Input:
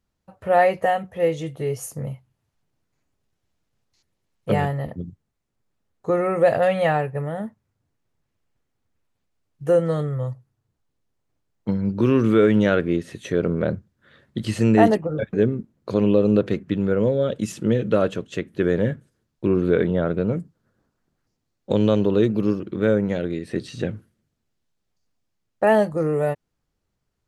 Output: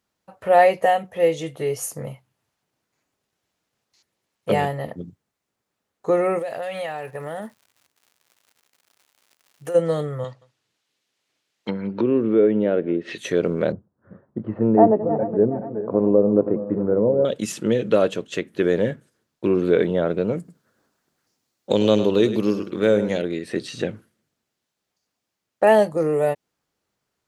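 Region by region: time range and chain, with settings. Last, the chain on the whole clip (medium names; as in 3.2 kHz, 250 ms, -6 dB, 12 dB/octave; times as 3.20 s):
6.38–9.74 s: tilt EQ +1.5 dB/octave + compression 8:1, threshold -28 dBFS + crackle 160 per s -49 dBFS
10.24–13.18 s: low-pass that closes with the level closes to 610 Hz, closed at -16.5 dBFS + frequency weighting D + delay 174 ms -24 dB
13.72–17.25 s: backward echo that repeats 209 ms, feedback 64%, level -11.5 dB + low-pass 1.1 kHz 24 dB/octave
20.38–23.22 s: treble shelf 3.4 kHz +6 dB + delay 103 ms -11.5 dB
whole clip: high-pass 410 Hz 6 dB/octave; dynamic bell 1.4 kHz, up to -6 dB, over -41 dBFS, Q 1.5; trim +5 dB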